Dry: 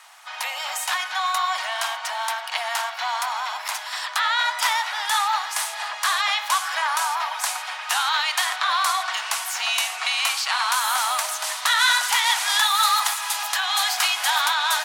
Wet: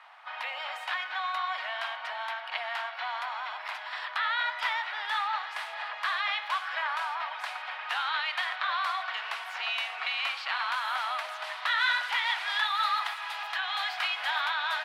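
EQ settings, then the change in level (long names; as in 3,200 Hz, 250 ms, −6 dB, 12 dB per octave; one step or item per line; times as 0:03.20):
dynamic equaliser 900 Hz, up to −8 dB, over −37 dBFS, Q 1.1
high-frequency loss of the air 410 metres
0.0 dB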